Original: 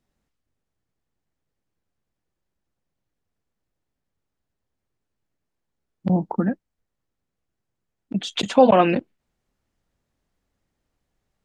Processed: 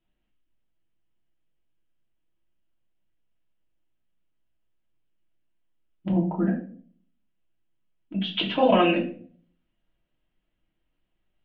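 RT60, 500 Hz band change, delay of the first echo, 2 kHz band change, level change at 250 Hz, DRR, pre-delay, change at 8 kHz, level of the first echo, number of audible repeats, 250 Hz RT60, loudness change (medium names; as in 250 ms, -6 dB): 0.50 s, -5.0 dB, no echo, +0.5 dB, -2.5 dB, -1.5 dB, 3 ms, under -30 dB, no echo, no echo, 0.65 s, -4.0 dB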